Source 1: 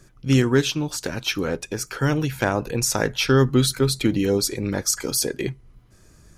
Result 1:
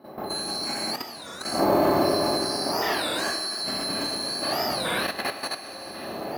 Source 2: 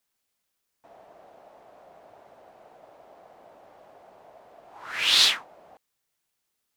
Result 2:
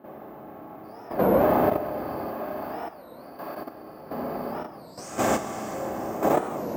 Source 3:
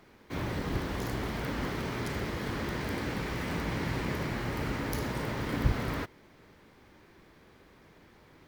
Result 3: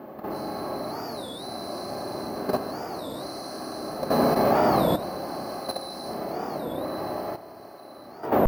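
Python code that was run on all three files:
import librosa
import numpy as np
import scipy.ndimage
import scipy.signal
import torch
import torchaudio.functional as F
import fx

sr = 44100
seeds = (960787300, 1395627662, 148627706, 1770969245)

p1 = fx.band_swap(x, sr, width_hz=4000)
p2 = fx.dmg_wind(p1, sr, seeds[0], corner_hz=630.0, level_db=-28.0)
p3 = (np.kron(scipy.signal.resample_poly(p2, 1, 3), np.eye(3)[0]) * 3)[:len(p2)]
p4 = p3 + fx.echo_thinned(p3, sr, ms=1067, feedback_pct=46, hz=660.0, wet_db=-10.5, dry=0)
p5 = fx.rev_schroeder(p4, sr, rt60_s=2.5, comb_ms=28, drr_db=-8.0)
p6 = fx.level_steps(p5, sr, step_db=11)
p7 = fx.mod_noise(p6, sr, seeds[1], snr_db=29)
p8 = fx.bandpass_q(p7, sr, hz=590.0, q=0.7)
p9 = fx.notch_comb(p8, sr, f0_hz=470.0)
y = fx.record_warp(p9, sr, rpm=33.33, depth_cents=250.0)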